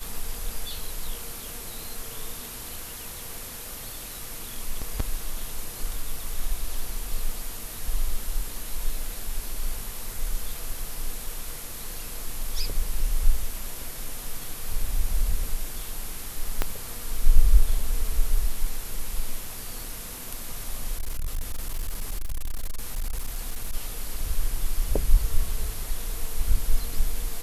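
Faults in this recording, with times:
0:16.62: click −8 dBFS
0:20.99–0:23.74: clipping −24 dBFS

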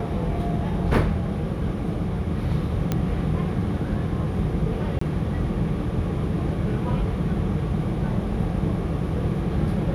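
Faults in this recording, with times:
0:02.92: click −10 dBFS
0:04.99–0:05.01: drop-out 24 ms

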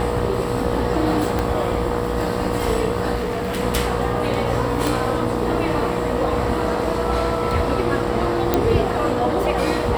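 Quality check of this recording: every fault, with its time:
mains buzz 60 Hz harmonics 21 −26 dBFS
whistle 480 Hz −27 dBFS
0:01.39: click
0:03.15–0:03.61: clipping −19.5 dBFS
0:04.87: click
0:08.54: click −3 dBFS

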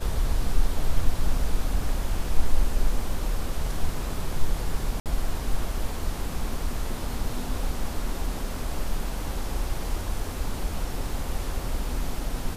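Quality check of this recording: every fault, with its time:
0:05.00–0:05.06: drop-out 58 ms

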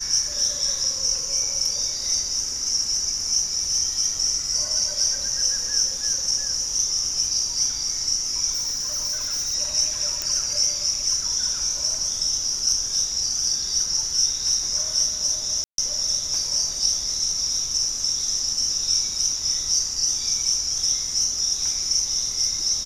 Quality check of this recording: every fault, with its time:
0:08.52–0:09.55: clipping −22.5 dBFS
0:10.22: click −10 dBFS
0:15.64–0:15.78: drop-out 142 ms

